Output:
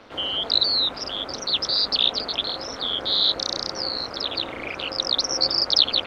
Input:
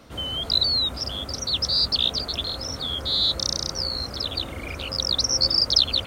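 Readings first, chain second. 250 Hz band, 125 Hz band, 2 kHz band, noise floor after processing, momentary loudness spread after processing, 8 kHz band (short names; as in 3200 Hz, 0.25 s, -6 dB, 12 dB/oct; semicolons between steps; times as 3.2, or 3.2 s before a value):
0.0 dB, -10.5 dB, +4.5 dB, -36 dBFS, 10 LU, -4.5 dB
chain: three-band isolator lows -19 dB, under 250 Hz, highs -21 dB, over 4800 Hz; AM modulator 210 Hz, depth 75%; gain +8 dB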